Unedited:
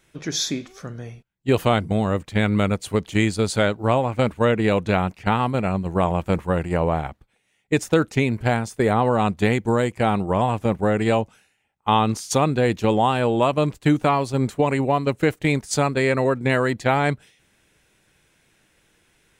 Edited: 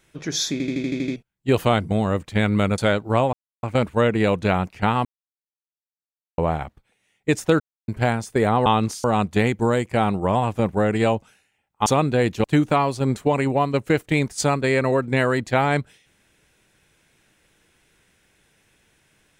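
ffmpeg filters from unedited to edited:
-filter_complex "[0:a]asplit=19[a][b][c][d][e][f][g][h][i][j][k][l][m][n][o][p][q][r][s];[a]atrim=end=0.602[t];[b]atrim=start=0.518:end=0.602[u];[c]atrim=start=0.518:end=0.602[v];[d]atrim=start=0.518:end=0.602[w];[e]atrim=start=0.518:end=0.602[x];[f]atrim=start=0.518:end=0.602[y];[g]atrim=start=0.518:end=0.602[z];[h]atrim=start=0.518:end=0.602[aa];[i]atrim=start=1.158:end=2.782[ab];[j]atrim=start=3.518:end=4.07,asetpts=PTS-STARTPTS,afade=t=out:st=0.548:d=0.004:c=hsin,apad=pad_dur=0.3[ac];[k]atrim=start=4.07:end=5.49,asetpts=PTS-STARTPTS,afade=t=in:d=0.004:c=hsin,afade=t=out:st=1.416:d=0.004:c=hsin[ad];[l]atrim=start=5.49:end=6.82,asetpts=PTS-STARTPTS,volume=0[ae];[m]atrim=start=6.82:end=8.04,asetpts=PTS-STARTPTS,afade=t=in:d=0.004:c=hsin,afade=t=out:st=1.216:d=0.004:c=hsin[af];[n]atrim=start=8.04:end=8.32,asetpts=PTS-STARTPTS,volume=0[ag];[o]atrim=start=8.32:end=9.102,asetpts=PTS-STARTPTS,afade=t=in:d=0.004:c=hsin[ah];[p]atrim=start=11.918:end=12.302[ai];[q]atrim=start=9.098:end=11.922[aj];[r]atrim=start=12.298:end=12.882[ak];[s]atrim=start=13.768[al];[t][u]acrossfade=d=0.004:c1=hsin:c2=hsin[am];[am][v]acrossfade=d=0.004:c1=hsin:c2=hsin[an];[an][w]acrossfade=d=0.004:c1=hsin:c2=hsin[ao];[ao][x]acrossfade=d=0.004:c1=hsin:c2=hsin[ap];[ap][y]acrossfade=d=0.004:c1=hsin:c2=hsin[aq];[aq][z]acrossfade=d=0.004:c1=hsin:c2=hsin[ar];[ar][aa]acrossfade=d=0.004:c1=hsin:c2=hsin[as];[as][ab]acrossfade=d=0.004:c1=hsin:c2=hsin[at];[ac][ad][ae][af][ag][ah]concat=n=6:v=0:a=1[au];[at][au]acrossfade=d=0.004:c1=hsin:c2=hsin[av];[av][ai]acrossfade=d=0.004:c1=hsin:c2=hsin[aw];[aw][aj]acrossfade=d=0.004:c1=hsin:c2=hsin[ax];[ax][ak]acrossfade=d=0.004:c1=hsin:c2=hsin[ay];[ay][al]acrossfade=d=0.004:c1=hsin:c2=hsin"

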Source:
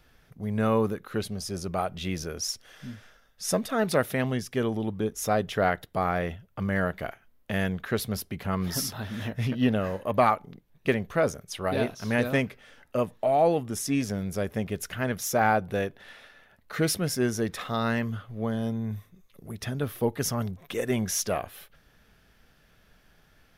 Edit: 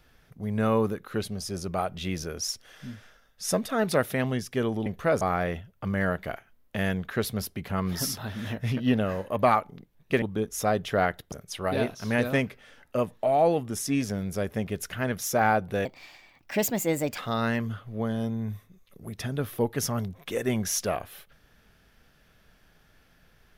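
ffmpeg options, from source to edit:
-filter_complex "[0:a]asplit=7[a][b][c][d][e][f][g];[a]atrim=end=4.862[h];[b]atrim=start=10.968:end=11.322[i];[c]atrim=start=5.958:end=10.972[j];[d]atrim=start=4.858:end=5.962[k];[e]atrim=start=11.318:end=15.854[l];[f]atrim=start=15.85:end=17.61,asetpts=PTS-STARTPTS,asetrate=58212,aresample=44100[m];[g]atrim=start=17.606[n];[h][i]acrossfade=d=0.004:c1=hsin:c2=hsin[o];[o][j]acrossfade=d=0.004:c1=hsin:c2=hsin[p];[p][k]acrossfade=d=0.004:c1=hsin:c2=hsin[q];[q][l]acrossfade=d=0.004:c1=hsin:c2=hsin[r];[r][m]acrossfade=d=0.004:c1=hsin:c2=hsin[s];[s][n]acrossfade=d=0.004:c1=hsin:c2=hsin"

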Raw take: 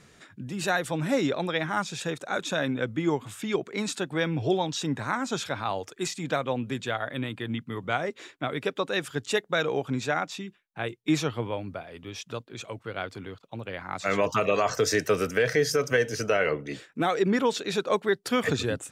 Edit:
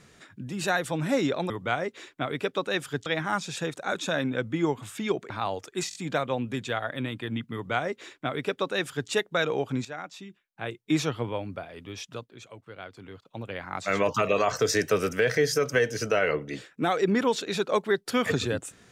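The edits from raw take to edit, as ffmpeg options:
-filter_complex "[0:a]asplit=10[a][b][c][d][e][f][g][h][i][j];[a]atrim=end=1.502[k];[b]atrim=start=7.718:end=9.282[l];[c]atrim=start=1.498:end=3.742[m];[d]atrim=start=5.538:end=6.152[n];[e]atrim=start=6.128:end=6.152[o];[f]atrim=start=6.128:end=6.152[p];[g]atrim=start=6.128:end=10.03,asetpts=PTS-STARTPTS,afade=t=out:st=3.898:d=0.004:c=hsin:silence=0.223872[q];[h]atrim=start=10.03:end=12.6,asetpts=PTS-STARTPTS,afade=t=in:d=1.18:silence=0.223872,afade=t=out:st=2.13:d=0.44:silence=0.375837[r];[i]atrim=start=12.6:end=13.13,asetpts=PTS-STARTPTS,volume=-8.5dB[s];[j]atrim=start=13.13,asetpts=PTS-STARTPTS,afade=t=in:d=0.44:silence=0.375837[t];[k][l]acrossfade=d=0.004:c1=hsin:c2=hsin[u];[u][m]acrossfade=d=0.004:c1=hsin:c2=hsin[v];[v][n]acrossfade=d=0.004:c1=hsin:c2=hsin[w];[w][o]acrossfade=d=0.004:c1=hsin:c2=hsin[x];[x][p]acrossfade=d=0.004:c1=hsin:c2=hsin[y];[q][r][s][t]concat=n=4:v=0:a=1[z];[y][z]acrossfade=d=0.004:c1=hsin:c2=hsin"

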